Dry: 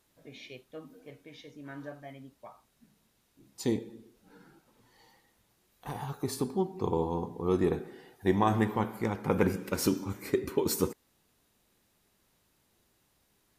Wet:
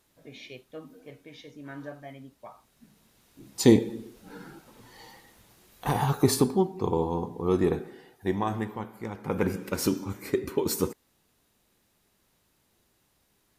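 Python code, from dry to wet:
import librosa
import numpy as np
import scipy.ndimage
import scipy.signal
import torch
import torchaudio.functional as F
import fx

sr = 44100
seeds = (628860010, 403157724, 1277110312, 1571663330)

y = fx.gain(x, sr, db=fx.line((2.38, 2.5), (3.67, 12.0), (6.27, 12.0), (6.75, 3.0), (7.77, 3.0), (8.91, -7.0), (9.58, 1.5)))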